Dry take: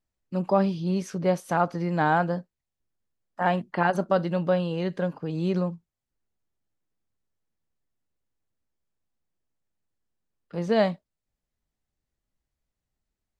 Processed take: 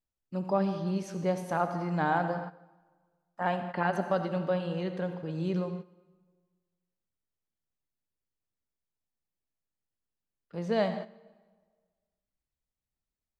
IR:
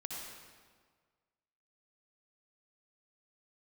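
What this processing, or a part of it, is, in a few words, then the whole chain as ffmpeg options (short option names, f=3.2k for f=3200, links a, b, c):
keyed gated reverb: -filter_complex "[0:a]asplit=3[a][b][c];[1:a]atrim=start_sample=2205[d];[b][d]afir=irnorm=-1:irlink=0[e];[c]apad=whole_len=590686[f];[e][f]sidechaingate=range=-12dB:threshold=-41dB:ratio=16:detection=peak,volume=-2.5dB[g];[a][g]amix=inputs=2:normalize=0,volume=-9dB"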